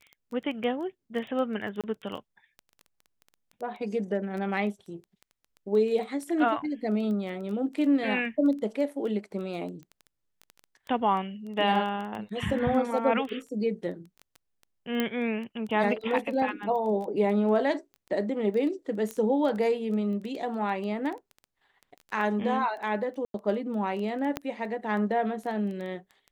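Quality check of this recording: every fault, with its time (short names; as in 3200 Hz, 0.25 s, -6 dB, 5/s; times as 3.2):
crackle 10/s -34 dBFS
1.81–1.84 gap 27 ms
15 pop -14 dBFS
19.11 pop -19 dBFS
23.25–23.34 gap 92 ms
24.37 pop -14 dBFS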